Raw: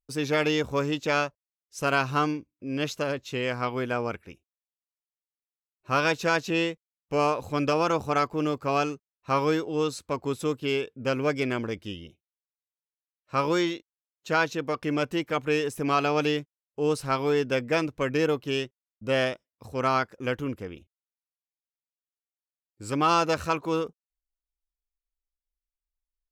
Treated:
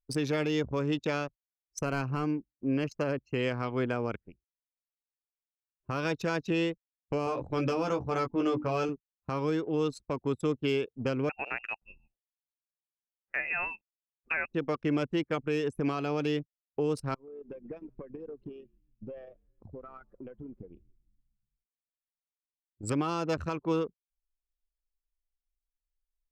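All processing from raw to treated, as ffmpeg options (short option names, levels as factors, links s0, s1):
-filter_complex "[0:a]asettb=1/sr,asplit=3[s0][s1][s2];[s0]atrim=end=1.814[s3];[s1]atrim=start=1.81:end=3.39,asetpts=PTS-STARTPTS,afade=t=in:d=0.004:c=qsin,afade=t=out:st=1.576:d=0.004:c=qsin,equalizer=f=4200:w=0.79:g=-2.5,aeval=exprs='clip(val(0),-1,0.075)':c=same,asuperstop=centerf=3600:order=4:qfactor=4.1[s4];[s2]atrim=start=3.386[s5];[s3][s4]acrossfade=d=0.004:c1=hsin:c2=qsin[s6];[s6][s5]acrossfade=d=0.004:c1=qsin:c2=hsin,asettb=1/sr,asplit=3[s7][s8][s9];[s7]atrim=end=7.254[s10];[s8]atrim=start=7.25:end=8.89,asetpts=PTS-STARTPTS,afade=t=in:d=0.004:c=qsin,afade=t=out:st=1.636:d=0.004:c=qsin,bandreject=f=50:t=h:w=6,bandreject=f=100:t=h:w=6,bandreject=f=150:t=h:w=6,bandreject=f=200:t=h:w=6,bandreject=f=250:t=h:w=6,bandreject=f=300:t=h:w=6,bandreject=f=350:t=h:w=6,asplit=2[s11][s12];[s12]adelay=16,volume=0.631[s13];[s11][s13]amix=inputs=2:normalize=0,atrim=end_sample=72324[s14];[s9]atrim=start=8.886[s15];[s10][s14]acrossfade=d=0.004:c1=hsin:c2=qsin[s16];[s16][s15]acrossfade=d=0.004:c1=qsin:c2=hsin,asettb=1/sr,asplit=3[s17][s18][s19];[s17]atrim=end=11.294[s20];[s18]atrim=start=11.29:end=14.54,asetpts=PTS-STARTPTS,afade=t=in:d=0.004:c=qsin,afade=t=out:st=3.246:d=0.004:c=qsin,highpass=530,lowpass=f=2600:t=q:w=0.5098,lowpass=f=2600:t=q:w=0.6013,lowpass=f=2600:t=q:w=0.9,lowpass=f=2600:t=q:w=2.563,afreqshift=-3000[s21];[s19]atrim=start=14.536[s22];[s20][s21]acrossfade=d=0.004:c1=hsin:c2=qsin[s23];[s23][s22]acrossfade=d=0.004:c1=qsin:c2=hsin,asettb=1/sr,asplit=3[s24][s25][s26];[s24]atrim=end=17.144[s27];[s25]atrim=start=17.14:end=22.83,asetpts=PTS-STARTPTS,afade=t=in:d=0.004:c=qsin,afade=t=out:st=5.686:d=0.004:c=qsin,acompressor=threshold=0.0112:ratio=8:attack=3.2:release=140:knee=1:detection=peak,asplit=7[s28][s29][s30][s31][s32][s33][s34];[s29]adelay=136,afreqshift=-50,volume=0.158[s35];[s30]adelay=272,afreqshift=-100,volume=0.0933[s36];[s31]adelay=408,afreqshift=-150,volume=0.055[s37];[s32]adelay=544,afreqshift=-200,volume=0.0327[s38];[s33]adelay=680,afreqshift=-250,volume=0.0193[s39];[s34]adelay=816,afreqshift=-300,volume=0.0114[s40];[s28][s35][s36][s37][s38][s39][s40]amix=inputs=7:normalize=0,atrim=end_sample=250929[s41];[s26]atrim=start=22.826[s42];[s27][s41]acrossfade=d=0.004:c1=hsin:c2=qsin[s43];[s43][s42]acrossfade=d=0.004:c1=qsin:c2=hsin,anlmdn=3.98,acrossover=split=420[s44][s45];[s45]acompressor=threshold=0.0158:ratio=2[s46];[s44][s46]amix=inputs=2:normalize=0,alimiter=level_in=1.12:limit=0.0631:level=0:latency=1:release=420,volume=0.891,volume=1.78"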